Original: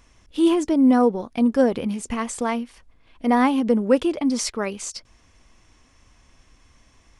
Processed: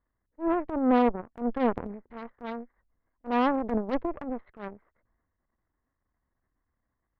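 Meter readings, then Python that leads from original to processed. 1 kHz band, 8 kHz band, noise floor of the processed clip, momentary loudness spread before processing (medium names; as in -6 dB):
-4.5 dB, under -40 dB, -82 dBFS, 13 LU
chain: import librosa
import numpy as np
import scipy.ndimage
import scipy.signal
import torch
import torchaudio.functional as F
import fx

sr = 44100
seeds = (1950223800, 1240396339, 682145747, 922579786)

y = scipy.signal.sosfilt(scipy.signal.butter(16, 2000.0, 'lowpass', fs=sr, output='sos'), x)
y = fx.cheby_harmonics(y, sr, harmonics=(3, 4, 5, 7), levels_db=(-11, -17, -18, -20), full_scale_db=-5.5)
y = fx.transient(y, sr, attack_db=-12, sustain_db=6)
y = y * 10.0 ** (-2.5 / 20.0)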